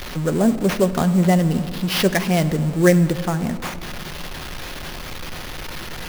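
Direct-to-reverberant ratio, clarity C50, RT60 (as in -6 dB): 9.5 dB, 14.0 dB, 2.2 s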